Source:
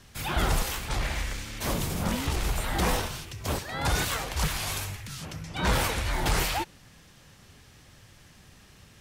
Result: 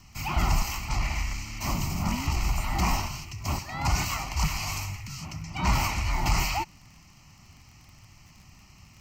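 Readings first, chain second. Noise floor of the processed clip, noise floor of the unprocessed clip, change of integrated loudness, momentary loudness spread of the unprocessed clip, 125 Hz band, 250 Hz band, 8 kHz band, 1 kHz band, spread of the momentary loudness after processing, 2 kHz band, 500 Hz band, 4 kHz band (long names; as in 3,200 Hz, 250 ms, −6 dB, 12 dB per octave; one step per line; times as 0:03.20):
−54 dBFS, −55 dBFS, 0.0 dB, 9 LU, +2.0 dB, −0.5 dB, −1.0 dB, +1.0 dB, 9 LU, −1.5 dB, −7.5 dB, −2.0 dB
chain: phaser with its sweep stopped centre 2,400 Hz, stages 8
surface crackle 37 per second −45 dBFS
level +2.5 dB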